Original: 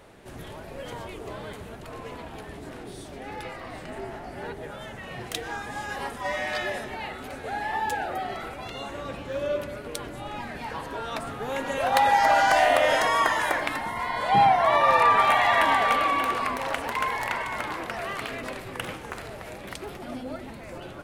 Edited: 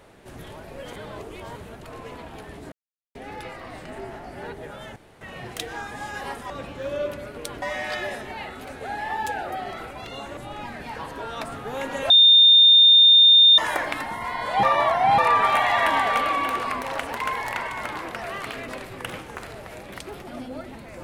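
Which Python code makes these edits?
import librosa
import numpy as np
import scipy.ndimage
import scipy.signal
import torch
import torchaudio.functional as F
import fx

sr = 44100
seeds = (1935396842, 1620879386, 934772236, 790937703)

y = fx.edit(x, sr, fx.reverse_span(start_s=0.93, length_s=0.63),
    fx.silence(start_s=2.72, length_s=0.43),
    fx.insert_room_tone(at_s=4.96, length_s=0.25),
    fx.move(start_s=9.0, length_s=1.12, to_s=6.25),
    fx.bleep(start_s=11.85, length_s=1.48, hz=3630.0, db=-9.5),
    fx.reverse_span(start_s=14.38, length_s=0.55), tone=tone)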